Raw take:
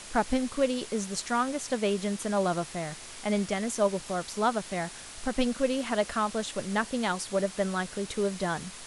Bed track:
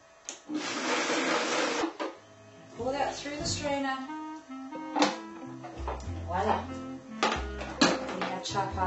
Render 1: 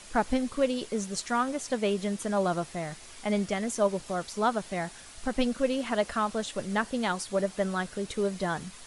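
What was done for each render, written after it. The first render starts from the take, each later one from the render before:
broadband denoise 6 dB, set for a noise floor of −45 dBFS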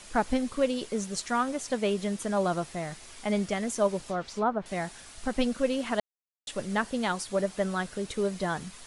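0:04.04–0:04.66: treble cut that deepens with the level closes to 1,300 Hz, closed at −23 dBFS
0:06.00–0:06.47: silence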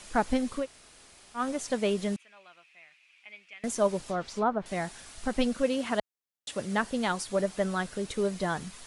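0:00.62–0:01.39: fill with room tone, crossfade 0.10 s
0:02.16–0:03.64: resonant band-pass 2,500 Hz, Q 8.2
0:05.63–0:06.79: high-pass filter 52 Hz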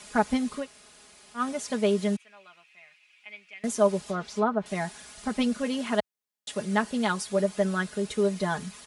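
high-pass filter 62 Hz
comb filter 4.8 ms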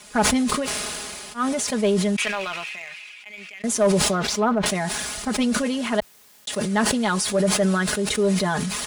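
leveller curve on the samples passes 1
level that may fall only so fast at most 21 dB per second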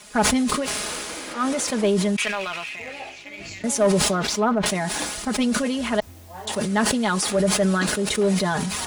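mix in bed track −8 dB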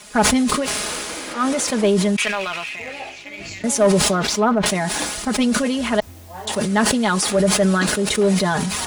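level +3.5 dB
brickwall limiter −3 dBFS, peak gain reduction 1.5 dB

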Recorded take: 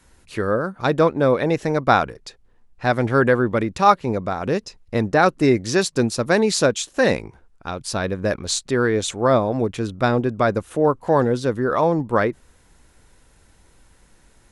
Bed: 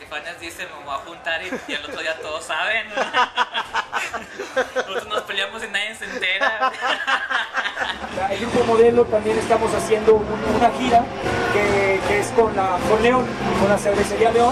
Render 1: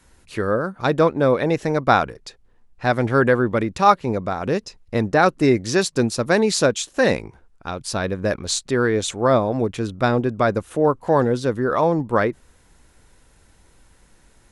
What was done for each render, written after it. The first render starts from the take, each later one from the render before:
no processing that can be heard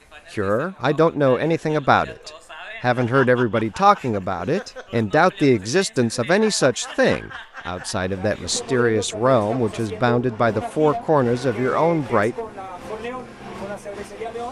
mix in bed −14 dB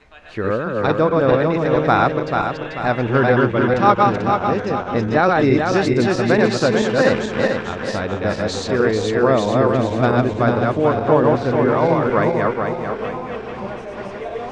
feedback delay that plays each chunk backwards 220 ms, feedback 66%, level −1.5 dB
high-frequency loss of the air 140 metres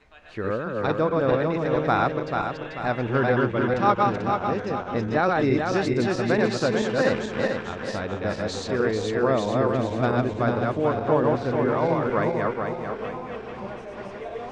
level −6.5 dB

